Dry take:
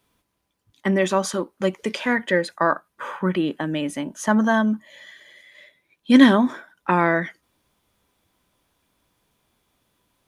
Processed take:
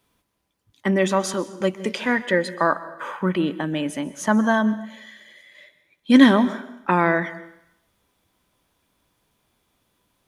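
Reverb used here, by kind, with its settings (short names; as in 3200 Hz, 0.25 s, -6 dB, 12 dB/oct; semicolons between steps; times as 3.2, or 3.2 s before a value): plate-style reverb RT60 0.82 s, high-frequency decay 0.95×, pre-delay 0.115 s, DRR 15.5 dB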